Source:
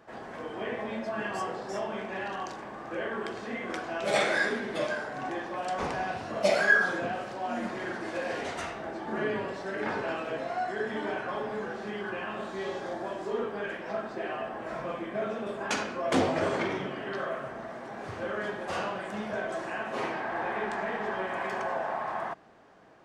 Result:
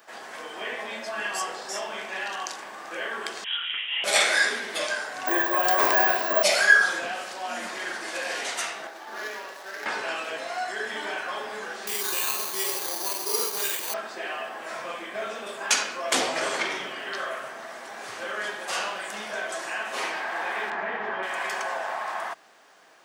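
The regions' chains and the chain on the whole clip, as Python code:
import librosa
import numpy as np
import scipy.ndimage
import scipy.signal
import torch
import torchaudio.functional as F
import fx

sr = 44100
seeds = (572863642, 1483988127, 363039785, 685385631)

y = fx.chain(x, sr, fx.highpass(hz=55.0, slope=12),
    fx.freq_invert(carrier_hz=3500),
    fx.detune_double(cents=59), at=(3.44, 4.04))
y = fx.chain(y, sr, fx.small_body(hz=(370.0, 620.0, 1000.0, 1600.0), ring_ms=25, db=14),
    fx.resample_bad(factor=2, down='filtered', up='hold'), at=(5.27, 6.43))
y = fx.chain(y, sr, fx.median_filter(points=15),
    fx.highpass(hz=750.0, slope=6),
    fx.high_shelf(hz=4100.0, db=-8.5), at=(8.87, 9.86))
y = fx.chain(y, sr, fx.ripple_eq(per_octave=0.74, db=7),
    fx.sample_hold(seeds[0], rate_hz=5300.0, jitter_pct=0), at=(11.87, 13.94))
y = fx.chain(y, sr, fx.lowpass(hz=2300.0, slope=12),
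    fx.low_shelf(hz=260.0, db=8.5), at=(20.7, 21.23))
y = fx.highpass(y, sr, hz=190.0, slope=6)
y = fx.tilt_eq(y, sr, slope=4.5)
y = y * 10.0 ** (2.5 / 20.0)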